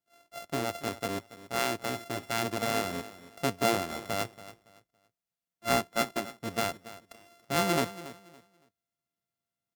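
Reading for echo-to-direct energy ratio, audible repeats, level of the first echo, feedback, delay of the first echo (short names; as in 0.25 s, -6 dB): -15.5 dB, 2, -16.0 dB, 26%, 0.281 s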